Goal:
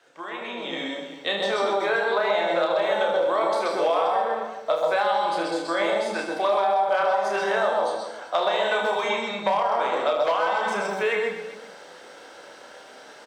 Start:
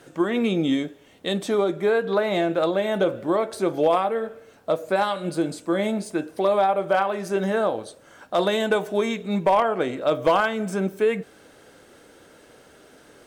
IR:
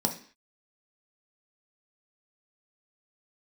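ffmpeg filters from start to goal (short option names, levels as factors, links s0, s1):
-filter_complex "[0:a]acrossover=split=510 6300:gain=0.0891 1 0.112[s0][s1][s2];[s0][s1][s2]amix=inputs=3:normalize=0,aecho=1:1:30|75|142.5|243.8|395.6:0.631|0.398|0.251|0.158|0.1,asplit=2[s3][s4];[1:a]atrim=start_sample=2205,adelay=128[s5];[s4][s5]afir=irnorm=-1:irlink=0,volume=0.316[s6];[s3][s6]amix=inputs=2:normalize=0,alimiter=limit=0.266:level=0:latency=1:release=243,acrossover=split=470|4000[s7][s8][s9];[s7]acompressor=threshold=0.0112:ratio=4[s10];[s8]acompressor=threshold=0.0562:ratio=4[s11];[s9]acompressor=threshold=0.00355:ratio=4[s12];[s10][s11][s12]amix=inputs=3:normalize=0,highshelf=f=9700:g=7,dynaudnorm=f=510:g=3:m=3.76,volume=0.473"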